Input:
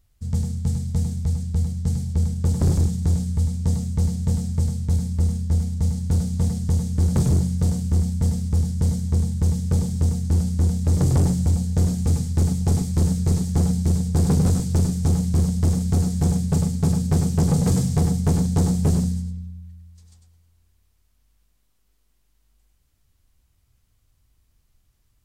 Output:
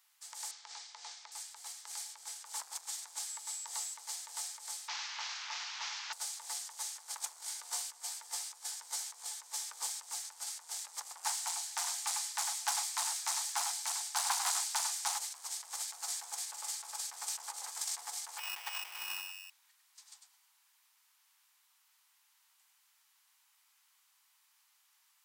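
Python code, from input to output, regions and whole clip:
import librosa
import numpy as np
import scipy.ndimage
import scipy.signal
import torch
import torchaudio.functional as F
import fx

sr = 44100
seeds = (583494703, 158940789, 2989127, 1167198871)

y = fx.chain(x, sr, fx.lowpass(hz=5700.0, slope=24),
    fx.peak_eq(hz=350.0, db=-3.0, octaves=0.29), at=(0.51, 1.32))
y = fx.highpass(y, sr, hz=50.0, slope=6, at=(3.28, 3.93), fade=0.02)
y = fx.dmg_tone(y, sr, hz=7700.0, level_db=-46.0, at=(3.28, 3.93), fade=0.02)
y = fx.chain(y, sr, fx.delta_mod(bps=32000, step_db=-37.0),
    fx.highpass(hz=690.0, slope=12), at=(4.88, 6.13))
y = fx.chain(y, sr, fx.doubler(ms=15.0, db=-7.0),
    fx.echo_single(ms=89, db=-14.0), at=(7.35, 9.87))
y = fx.chain(y, sr, fx.cheby1_highpass(hz=660.0, order=6),
    fx.doppler_dist(depth_ms=0.14), at=(11.24, 15.18))
y = fx.chain(y, sr, fx.high_shelf(hz=7600.0, db=-9.5),
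    fx.sample_hold(seeds[0], rate_hz=2700.0, jitter_pct=0), at=(18.38, 19.5))
y = fx.over_compress(y, sr, threshold_db=-23.0, ratio=-0.5)
y = scipy.signal.sosfilt(scipy.signal.ellip(4, 1.0, 80, 870.0, 'highpass', fs=sr, output='sos'), y)
y = F.gain(torch.from_numpy(y), 2.0).numpy()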